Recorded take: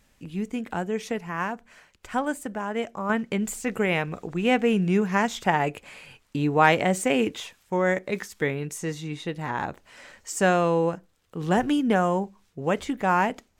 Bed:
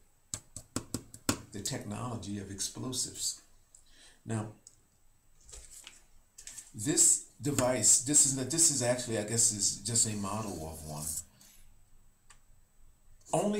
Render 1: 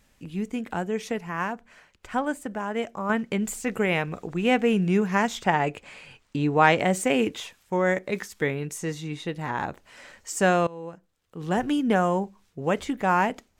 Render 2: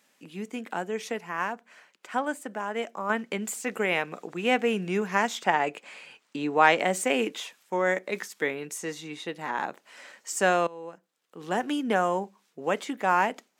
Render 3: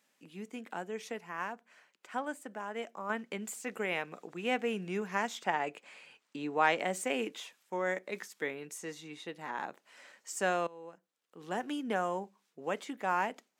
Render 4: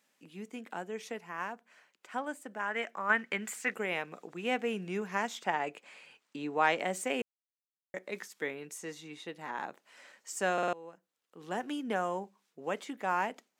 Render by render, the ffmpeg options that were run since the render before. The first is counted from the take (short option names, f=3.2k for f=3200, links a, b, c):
-filter_complex "[0:a]asettb=1/sr,asplit=3[a][b][c];[a]atrim=end=1.534[d];[b]atrim=start=1.53:end=2.51,asetpts=PTS-STARTPTS,afade=t=in:d=0.004:c=qsin,afade=t=out:st=0.976:d=0.004:c=qsin,highshelf=f=5.8k:g=-5.5[e];[c]atrim=start=2.506[f];[d][e]acrossfade=d=0.004:c1=hsin:c2=qsin[g];[g][f]acrossfade=d=0.004:c1=qsin:c2=hsin,asettb=1/sr,asplit=3[h][i][j];[h]atrim=end=5.404[k];[i]atrim=start=5.4:end=6.79,asetpts=PTS-STARTPTS,afade=t=in:d=0.004:c=qsin,afade=t=out:st=1.386:d=0.004:c=qsin,equalizer=f=12k:w=2.4:g=-15[l];[j]atrim=start=6.786[m];[k][l]acrossfade=d=0.004:c1=hsin:c2=qsin[n];[n][m]acrossfade=d=0.004:c1=qsin:c2=hsin,asplit=2[o][p];[o]atrim=end=10.67,asetpts=PTS-STARTPTS,afade=t=out:st=10.666:d=0.004:c=hsin:silence=0.0841395[q];[p]atrim=start=10.67,asetpts=PTS-STARTPTS,afade=t=in:d=1.28:silence=0.0841395[r];[q][r]concat=n=2:v=0:a=1"
-af "highpass=f=180:w=0.5412,highpass=f=180:w=1.3066,lowshelf=f=250:g=-10.5"
-af "volume=-8dB"
-filter_complex "[0:a]asettb=1/sr,asplit=3[a][b][c];[a]atrim=end=2.594[d];[b]atrim=start=2.59:end=3.74,asetpts=PTS-STARTPTS,afade=t=in:d=0.004:c=qsin,afade=t=out:st=1.146:d=0.004:c=qsin,equalizer=f=1.8k:t=o:w=1.3:g=12.5[e];[c]atrim=start=3.736[f];[d][e]acrossfade=d=0.004:c1=hsin:c2=qsin[g];[g][f]acrossfade=d=0.004:c1=qsin:c2=hsin,asplit=7[h][i][j][k][l][m][n];[h]atrim=end=7.22,asetpts=PTS-STARTPTS,afade=t=out:st=7.216:d=0.004:c=hsin[o];[i]atrim=start=7.22:end=7.94,asetpts=PTS-STARTPTS,volume=0[p];[j]atrim=start=7.94:end=10.582,asetpts=PTS-STARTPTS,afade=t=in:d=0.004:c=hsin[q];[k]atrim=start=10.528:end=10.582[r];[l]atrim=start=10.528:end=10.582[s];[m]atrim=start=10.528:end=10.582[t];[n]atrim=start=10.728[u];[o][p][q]concat=n=3:v=0:a=1[v];[v][r]acrossfade=d=0.004:c1=hsin:c2=hsin[w];[w][s]acrossfade=d=0.004:c1=hsin:c2=hsin[x];[x][t]acrossfade=d=0.004:c1=hsin:c2=hsin[y];[y][u]acrossfade=d=0.004:c1=hsin:c2=hsin"